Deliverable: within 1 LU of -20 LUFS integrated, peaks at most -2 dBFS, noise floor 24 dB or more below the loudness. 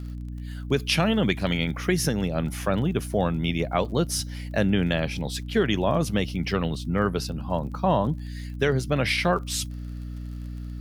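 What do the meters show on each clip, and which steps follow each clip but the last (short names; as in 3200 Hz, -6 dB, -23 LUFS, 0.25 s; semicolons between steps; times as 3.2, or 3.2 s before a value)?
ticks 24/s; hum 60 Hz; harmonics up to 300 Hz; hum level -32 dBFS; loudness -25.5 LUFS; peak -9.5 dBFS; loudness target -20.0 LUFS
-> de-click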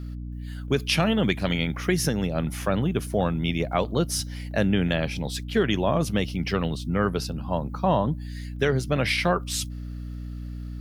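ticks 0.093/s; hum 60 Hz; harmonics up to 300 Hz; hum level -32 dBFS
-> de-hum 60 Hz, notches 5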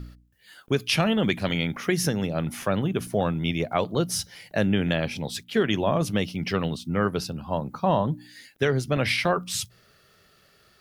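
hum none; loudness -26.0 LUFS; peak -10.0 dBFS; loudness target -20.0 LUFS
-> gain +6 dB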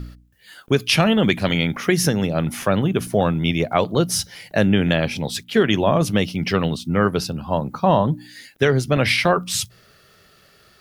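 loudness -20.0 LUFS; peak -4.0 dBFS; noise floor -54 dBFS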